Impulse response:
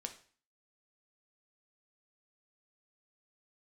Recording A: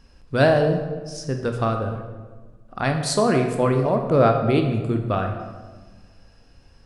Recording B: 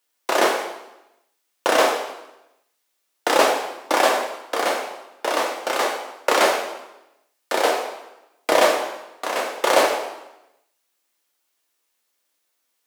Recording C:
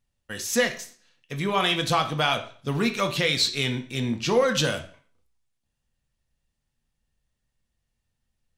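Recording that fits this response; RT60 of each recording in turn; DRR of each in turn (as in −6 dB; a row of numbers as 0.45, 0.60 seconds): C; 1.4, 0.95, 0.45 seconds; 4.0, 1.0, 5.0 decibels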